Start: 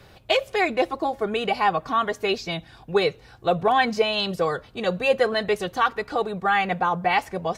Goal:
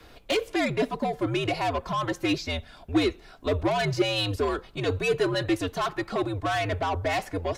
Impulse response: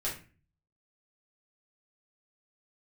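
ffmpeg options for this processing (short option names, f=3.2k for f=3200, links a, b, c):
-filter_complex "[0:a]acrossover=split=420|4500[a][b][c];[b]asoftclip=type=tanh:threshold=-24.5dB[d];[a][d][c]amix=inputs=3:normalize=0,afreqshift=-85"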